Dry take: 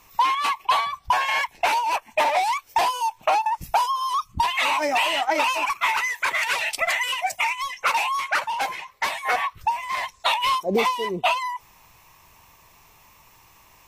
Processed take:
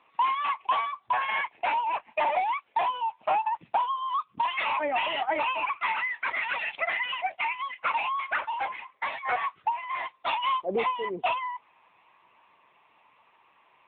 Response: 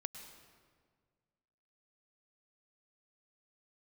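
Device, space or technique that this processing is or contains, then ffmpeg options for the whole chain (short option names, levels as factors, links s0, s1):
telephone: -af "highpass=270,lowpass=3500,asoftclip=type=tanh:threshold=0.282,volume=0.668" -ar 8000 -c:a libopencore_amrnb -b:a 10200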